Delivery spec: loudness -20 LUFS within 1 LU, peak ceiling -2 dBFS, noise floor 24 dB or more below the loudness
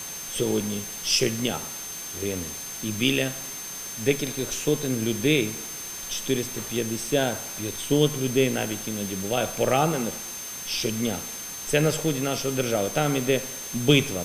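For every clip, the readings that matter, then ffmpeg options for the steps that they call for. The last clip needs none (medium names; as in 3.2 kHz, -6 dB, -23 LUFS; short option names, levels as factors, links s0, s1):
steady tone 6.3 kHz; tone level -36 dBFS; noise floor -36 dBFS; noise floor target -50 dBFS; loudness -26.0 LUFS; peak level -6.0 dBFS; loudness target -20.0 LUFS
-> -af "bandreject=f=6300:w=30"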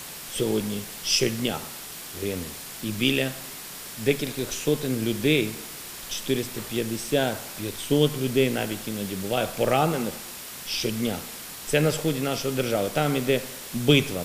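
steady tone not found; noise floor -39 dBFS; noise floor target -51 dBFS
-> -af "afftdn=nr=12:nf=-39"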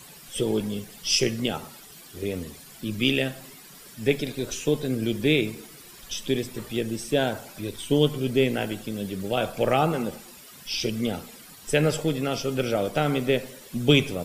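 noise floor -47 dBFS; noise floor target -51 dBFS
-> -af "afftdn=nr=6:nf=-47"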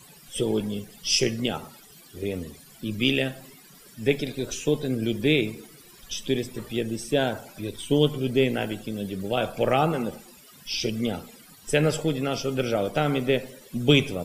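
noise floor -51 dBFS; loudness -26.5 LUFS; peak level -6.5 dBFS; loudness target -20.0 LUFS
-> -af "volume=2.11,alimiter=limit=0.794:level=0:latency=1"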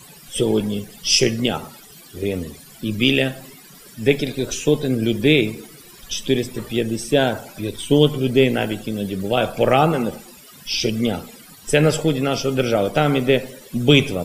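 loudness -20.0 LUFS; peak level -2.0 dBFS; noise floor -45 dBFS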